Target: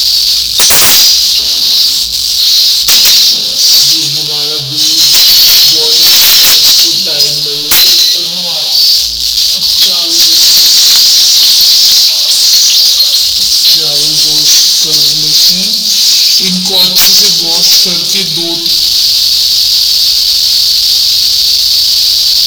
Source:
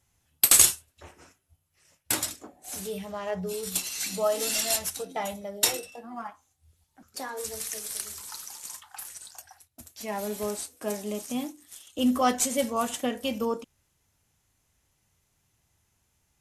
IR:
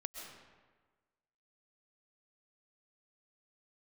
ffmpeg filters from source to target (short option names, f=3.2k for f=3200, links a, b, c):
-filter_complex "[0:a]aeval=exprs='val(0)+0.5*0.0299*sgn(val(0))':c=same,asetrate=32193,aresample=44100,highshelf=f=6.1k:t=q:w=3:g=-12.5,asplit=2[a][b];[1:a]atrim=start_sample=2205,adelay=21[c];[b][c]afir=irnorm=-1:irlink=0,volume=-6.5dB[d];[a][d]amix=inputs=2:normalize=0,aexciter=amount=12.3:drive=10:freq=3.2k,acontrast=62,volume=-1dB"